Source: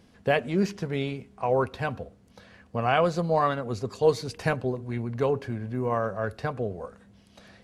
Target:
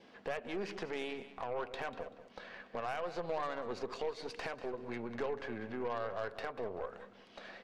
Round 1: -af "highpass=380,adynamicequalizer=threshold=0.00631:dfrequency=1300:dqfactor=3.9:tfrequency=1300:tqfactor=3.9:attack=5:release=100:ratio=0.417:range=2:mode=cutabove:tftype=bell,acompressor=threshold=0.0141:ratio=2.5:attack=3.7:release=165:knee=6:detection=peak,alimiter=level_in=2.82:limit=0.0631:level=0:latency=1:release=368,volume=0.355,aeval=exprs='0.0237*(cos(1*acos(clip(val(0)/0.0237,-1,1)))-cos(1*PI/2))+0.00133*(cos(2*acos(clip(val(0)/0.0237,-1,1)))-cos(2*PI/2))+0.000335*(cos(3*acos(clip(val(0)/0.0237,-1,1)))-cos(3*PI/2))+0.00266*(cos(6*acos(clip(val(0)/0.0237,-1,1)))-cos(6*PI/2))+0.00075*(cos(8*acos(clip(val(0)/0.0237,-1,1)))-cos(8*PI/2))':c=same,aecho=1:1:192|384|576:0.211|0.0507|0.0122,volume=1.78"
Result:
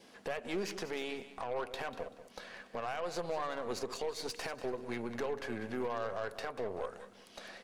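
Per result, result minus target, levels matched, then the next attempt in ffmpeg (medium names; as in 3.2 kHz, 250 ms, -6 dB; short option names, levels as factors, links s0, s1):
compression: peak gain reduction -4.5 dB; 4 kHz band +3.0 dB
-af "highpass=380,adynamicequalizer=threshold=0.00631:dfrequency=1300:dqfactor=3.9:tfrequency=1300:tqfactor=3.9:attack=5:release=100:ratio=0.417:range=2:mode=cutabove:tftype=bell,acompressor=threshold=0.00596:ratio=2.5:attack=3.7:release=165:knee=6:detection=peak,alimiter=level_in=2.82:limit=0.0631:level=0:latency=1:release=368,volume=0.355,aeval=exprs='0.0237*(cos(1*acos(clip(val(0)/0.0237,-1,1)))-cos(1*PI/2))+0.00133*(cos(2*acos(clip(val(0)/0.0237,-1,1)))-cos(2*PI/2))+0.000335*(cos(3*acos(clip(val(0)/0.0237,-1,1)))-cos(3*PI/2))+0.00266*(cos(6*acos(clip(val(0)/0.0237,-1,1)))-cos(6*PI/2))+0.00075*(cos(8*acos(clip(val(0)/0.0237,-1,1)))-cos(8*PI/2))':c=same,aecho=1:1:192|384|576:0.211|0.0507|0.0122,volume=1.78"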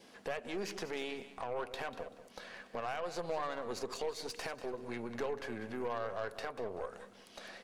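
4 kHz band +3.0 dB
-af "highpass=380,adynamicequalizer=threshold=0.00631:dfrequency=1300:dqfactor=3.9:tfrequency=1300:tqfactor=3.9:attack=5:release=100:ratio=0.417:range=2:mode=cutabove:tftype=bell,lowpass=3400,acompressor=threshold=0.00596:ratio=2.5:attack=3.7:release=165:knee=6:detection=peak,alimiter=level_in=2.82:limit=0.0631:level=0:latency=1:release=368,volume=0.355,aeval=exprs='0.0237*(cos(1*acos(clip(val(0)/0.0237,-1,1)))-cos(1*PI/2))+0.00133*(cos(2*acos(clip(val(0)/0.0237,-1,1)))-cos(2*PI/2))+0.000335*(cos(3*acos(clip(val(0)/0.0237,-1,1)))-cos(3*PI/2))+0.00266*(cos(6*acos(clip(val(0)/0.0237,-1,1)))-cos(6*PI/2))+0.00075*(cos(8*acos(clip(val(0)/0.0237,-1,1)))-cos(8*PI/2))':c=same,aecho=1:1:192|384|576:0.211|0.0507|0.0122,volume=1.78"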